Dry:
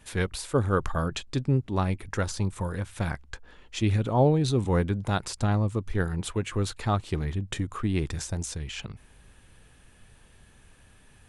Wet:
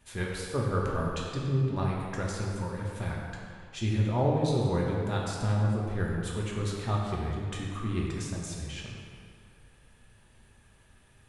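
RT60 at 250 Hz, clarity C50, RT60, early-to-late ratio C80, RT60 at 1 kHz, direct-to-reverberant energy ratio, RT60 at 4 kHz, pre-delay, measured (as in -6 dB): 1.9 s, 0.5 dB, 2.2 s, 1.5 dB, 2.3 s, -3.0 dB, 1.5 s, 3 ms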